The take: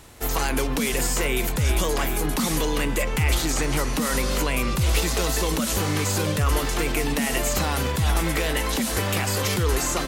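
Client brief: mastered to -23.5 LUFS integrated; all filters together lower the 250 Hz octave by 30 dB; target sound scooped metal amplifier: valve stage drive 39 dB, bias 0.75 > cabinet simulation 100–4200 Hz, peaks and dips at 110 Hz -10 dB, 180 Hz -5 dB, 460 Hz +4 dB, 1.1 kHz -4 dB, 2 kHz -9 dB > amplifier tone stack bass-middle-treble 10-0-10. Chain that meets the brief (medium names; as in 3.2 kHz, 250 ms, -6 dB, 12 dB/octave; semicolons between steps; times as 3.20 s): peaking EQ 250 Hz -6.5 dB; valve stage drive 39 dB, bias 0.75; cabinet simulation 100–4200 Hz, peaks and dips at 110 Hz -10 dB, 180 Hz -5 dB, 460 Hz +4 dB, 1.1 kHz -4 dB, 2 kHz -9 dB; amplifier tone stack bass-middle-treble 10-0-10; trim +27 dB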